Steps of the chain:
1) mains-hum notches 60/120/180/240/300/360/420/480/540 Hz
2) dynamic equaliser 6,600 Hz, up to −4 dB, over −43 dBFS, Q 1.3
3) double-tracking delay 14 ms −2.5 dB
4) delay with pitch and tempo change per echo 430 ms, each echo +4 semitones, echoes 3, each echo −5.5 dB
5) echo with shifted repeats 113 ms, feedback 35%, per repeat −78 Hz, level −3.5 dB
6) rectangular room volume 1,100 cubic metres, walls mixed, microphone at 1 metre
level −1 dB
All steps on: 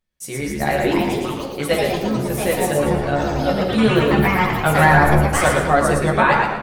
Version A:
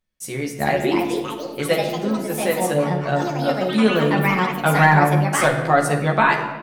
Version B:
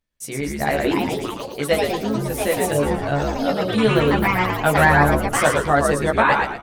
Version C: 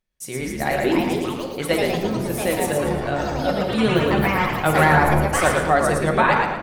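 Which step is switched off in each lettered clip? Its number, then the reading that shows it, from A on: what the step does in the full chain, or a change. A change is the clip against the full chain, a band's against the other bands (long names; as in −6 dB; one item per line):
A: 5, echo-to-direct ratio 0.0 dB to −4.5 dB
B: 6, echo-to-direct ratio 0.0 dB to −3.0 dB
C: 3, 125 Hz band −1.5 dB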